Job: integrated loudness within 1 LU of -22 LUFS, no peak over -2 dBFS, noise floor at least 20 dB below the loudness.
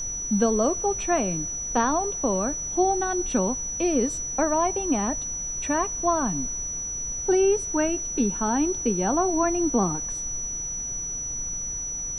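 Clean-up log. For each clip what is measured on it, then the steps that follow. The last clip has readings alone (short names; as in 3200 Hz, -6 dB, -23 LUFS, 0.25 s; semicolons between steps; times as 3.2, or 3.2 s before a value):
steady tone 5900 Hz; tone level -29 dBFS; noise floor -32 dBFS; noise floor target -45 dBFS; loudness -24.5 LUFS; peak -9.0 dBFS; loudness target -22.0 LUFS
-> notch 5900 Hz, Q 30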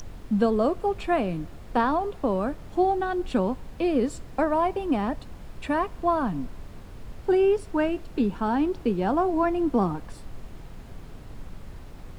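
steady tone none; noise floor -43 dBFS; noise floor target -46 dBFS
-> noise print and reduce 6 dB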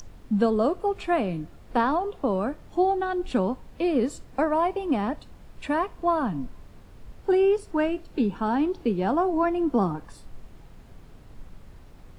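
noise floor -49 dBFS; loudness -26.0 LUFS; peak -9.5 dBFS; loudness target -22.0 LUFS
-> gain +4 dB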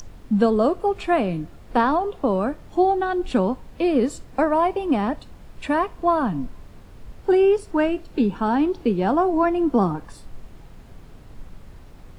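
loudness -22.0 LUFS; peak -5.5 dBFS; noise floor -45 dBFS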